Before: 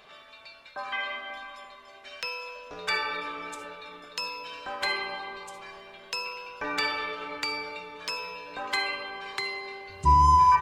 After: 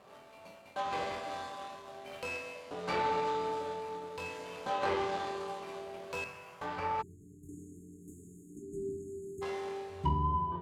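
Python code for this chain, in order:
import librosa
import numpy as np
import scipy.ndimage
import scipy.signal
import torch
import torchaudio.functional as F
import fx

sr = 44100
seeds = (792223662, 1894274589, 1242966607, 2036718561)

y = scipy.signal.medfilt(x, 25)
y = scipy.signal.sosfilt(scipy.signal.butter(2, 91.0, 'highpass', fs=sr, output='sos'), y)
y = fx.env_lowpass_down(y, sr, base_hz=520.0, full_db=-24.0)
y = fx.room_flutter(y, sr, wall_m=3.9, rt60_s=0.23)
y = fx.rev_fdn(y, sr, rt60_s=1.1, lf_ratio=1.0, hf_ratio=0.95, size_ms=11.0, drr_db=5.5)
y = fx.spec_erase(y, sr, start_s=7.02, length_s=2.4, low_hz=420.0, high_hz=6500.0)
y = fx.graphic_eq_10(y, sr, hz=(250, 500, 2000, 4000, 8000), db=(-11, -8, -3, -9, -7), at=(6.24, 7.49))
y = fx.rider(y, sr, range_db=5, speed_s=2.0)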